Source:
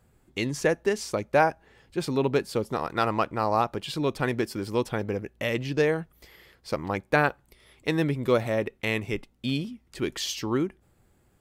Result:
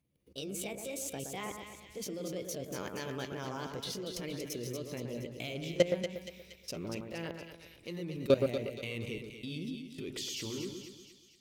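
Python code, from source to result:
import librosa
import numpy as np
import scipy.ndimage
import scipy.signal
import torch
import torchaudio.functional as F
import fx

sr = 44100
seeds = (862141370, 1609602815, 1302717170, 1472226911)

p1 = fx.pitch_glide(x, sr, semitones=5.5, runs='ending unshifted')
p2 = fx.band_shelf(p1, sr, hz=1100.0, db=-10.5, octaves=1.7)
p3 = np.clip(p2, -10.0 ** (-23.5 / 20.0), 10.0 ** (-23.5 / 20.0))
p4 = p2 + (p3 * librosa.db_to_amplitude(-8.5))
p5 = fx.highpass(p4, sr, hz=52.0, slope=6)
p6 = fx.level_steps(p5, sr, step_db=20)
y = fx.echo_split(p6, sr, split_hz=1900.0, low_ms=119, high_ms=235, feedback_pct=52, wet_db=-6.0)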